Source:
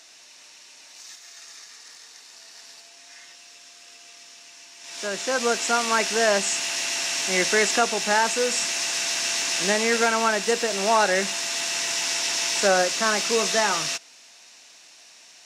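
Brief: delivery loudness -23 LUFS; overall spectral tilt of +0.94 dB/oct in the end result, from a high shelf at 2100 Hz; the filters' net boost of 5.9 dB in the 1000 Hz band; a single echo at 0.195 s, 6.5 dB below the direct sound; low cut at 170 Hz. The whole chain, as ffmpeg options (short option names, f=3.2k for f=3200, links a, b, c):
-af "highpass=170,equalizer=f=1k:t=o:g=6,highshelf=f=2.1k:g=7.5,aecho=1:1:195:0.473,volume=-7.5dB"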